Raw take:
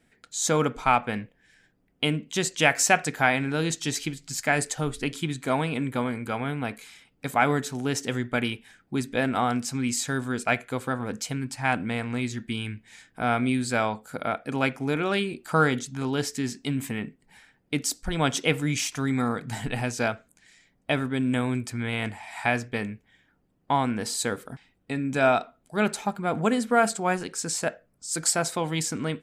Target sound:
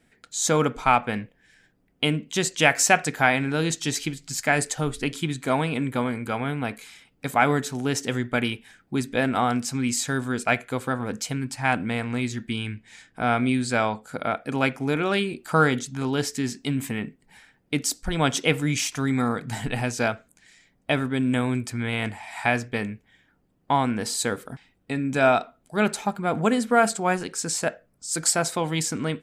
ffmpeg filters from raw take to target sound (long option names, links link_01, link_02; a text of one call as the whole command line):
ffmpeg -i in.wav -filter_complex "[0:a]asettb=1/sr,asplit=3[link_01][link_02][link_03];[link_01]atrim=end=12.484[link_04];[link_02]atrim=start=12.48:end=14.36,asetpts=PTS-STARTPTS,afade=type=in:duration=0.004:curve=qsin,afade=type=out:start_time=1.876:duration=0.004:curve=qsin,lowpass=9900[link_05];[link_03]atrim=start=14.356[link_06];[link_04][link_05]acrossfade=duration=0.004:curve1=hsin:curve2=qsin[link_07];[link_07][link_06]acrossfade=duration=0.004:curve1=qsin:curve2=hsin,volume=2dB" out.wav